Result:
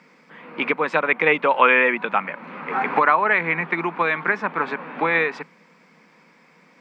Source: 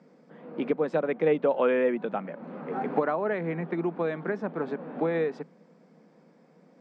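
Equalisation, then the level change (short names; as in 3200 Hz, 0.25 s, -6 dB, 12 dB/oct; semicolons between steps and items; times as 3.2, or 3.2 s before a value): dynamic EQ 970 Hz, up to +5 dB, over -40 dBFS, Q 0.75; band shelf 1500 Hz +15 dB; resonant high shelf 2200 Hz +11 dB, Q 1.5; 0.0 dB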